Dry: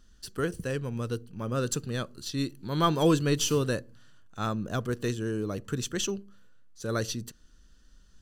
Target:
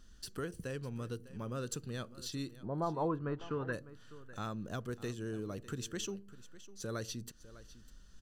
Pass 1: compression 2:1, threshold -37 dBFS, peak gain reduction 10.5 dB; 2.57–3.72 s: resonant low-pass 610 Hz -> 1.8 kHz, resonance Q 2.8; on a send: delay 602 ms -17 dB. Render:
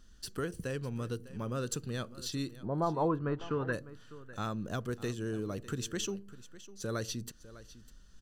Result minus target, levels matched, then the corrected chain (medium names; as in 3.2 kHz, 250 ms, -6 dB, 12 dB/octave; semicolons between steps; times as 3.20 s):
compression: peak gain reduction -4 dB
compression 2:1, threshold -45 dBFS, peak gain reduction 14.5 dB; 2.57–3.72 s: resonant low-pass 610 Hz -> 1.8 kHz, resonance Q 2.8; on a send: delay 602 ms -17 dB